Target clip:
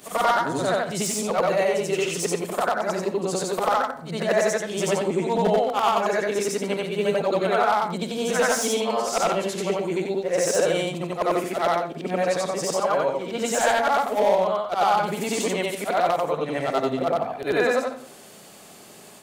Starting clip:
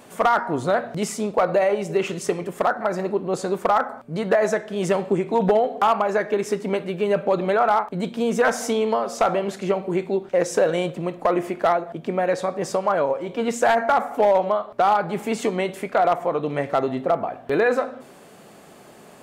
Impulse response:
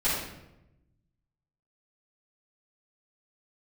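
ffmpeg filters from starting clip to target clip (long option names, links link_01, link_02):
-filter_complex "[0:a]afftfilt=real='re':imag='-im':win_size=8192:overlap=0.75,acrossover=split=3000[link_01][link_02];[link_02]aeval=exprs='0.0531*sin(PI/2*2*val(0)/0.0531)':channel_layout=same[link_03];[link_01][link_03]amix=inputs=2:normalize=0,volume=2.5dB"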